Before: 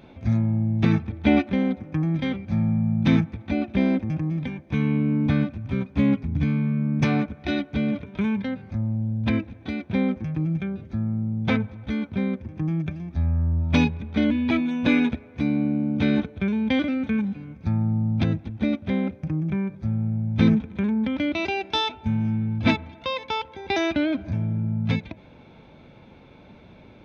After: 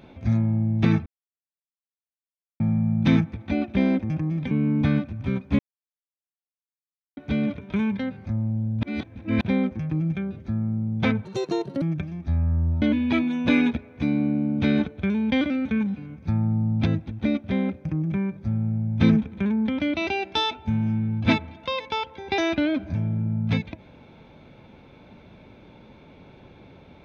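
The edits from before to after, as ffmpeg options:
ffmpeg -i in.wav -filter_complex "[0:a]asplit=11[link_01][link_02][link_03][link_04][link_05][link_06][link_07][link_08][link_09][link_10][link_11];[link_01]atrim=end=1.06,asetpts=PTS-STARTPTS,afade=type=out:start_time=1.056:duration=0.004:curve=hsin[link_12];[link_02]atrim=start=1.06:end=2.6,asetpts=PTS-STARTPTS,volume=0[link_13];[link_03]atrim=start=2.6:end=4.512,asetpts=PTS-STARTPTS,afade=type=in:duration=0.004:curve=hsin[link_14];[link_04]atrim=start=4.958:end=6.04,asetpts=PTS-STARTPTS,afade=type=out:start_time=1.078:duration=0.004:curve=hsin[link_15];[link_05]atrim=start=6.04:end=7.62,asetpts=PTS-STARTPTS,volume=0[link_16];[link_06]atrim=start=7.62:end=9.282,asetpts=PTS-STARTPTS,afade=type=in:duration=0.004:curve=hsin[link_17];[link_07]atrim=start=9.278:end=9.862,asetpts=PTS-STARTPTS,areverse[link_18];[link_08]atrim=start=9.858:end=11.704[link_19];[link_09]atrim=start=11.7:end=12.7,asetpts=PTS-STARTPTS,asetrate=77616,aresample=44100[link_20];[link_10]atrim=start=12.696:end=13.702[link_21];[link_11]atrim=start=14.198[link_22];[link_12][link_13][link_14]concat=n=3:v=0:a=1[link_23];[link_15][link_16][link_17]concat=n=3:v=0:a=1[link_24];[link_23][link_24]acrossfade=duration=0.004:curve1=hsin:curve2=hsin[link_25];[link_25][link_18]acrossfade=duration=0.004:curve1=hsin:curve2=hsin[link_26];[link_26][link_19]acrossfade=duration=0.004:curve1=hsin:curve2=hsin[link_27];[link_27][link_20]acrossfade=duration=0.004:curve1=hsin:curve2=hsin[link_28];[link_28][link_21]acrossfade=duration=0.004:curve1=hsin:curve2=hsin[link_29];[link_29][link_22]acrossfade=duration=0.004:curve1=hsin:curve2=hsin" out.wav

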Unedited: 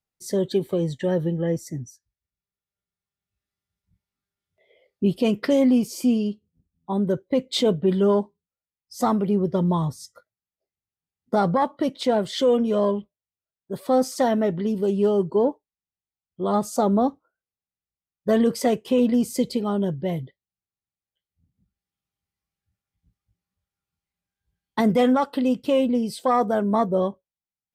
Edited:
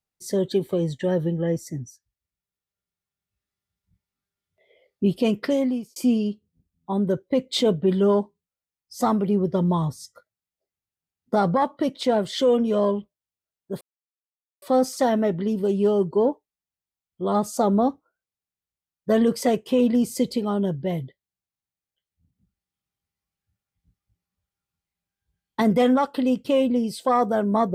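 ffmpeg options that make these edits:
ffmpeg -i in.wav -filter_complex "[0:a]asplit=3[link_01][link_02][link_03];[link_01]atrim=end=5.96,asetpts=PTS-STARTPTS,afade=type=out:start_time=5.14:duration=0.82:curve=qsin[link_04];[link_02]atrim=start=5.96:end=13.81,asetpts=PTS-STARTPTS,afade=type=in:duration=0.004:curve=hsin,afade=type=out:start_time=7.846:duration=0.004:curve=hsin,apad=pad_dur=0.81[link_05];[link_03]atrim=start=13.81,asetpts=PTS-STARTPTS,afade=type=in:duration=0.004:curve=hsin[link_06];[link_04][link_05][link_06]concat=n=3:v=0:a=1" out.wav

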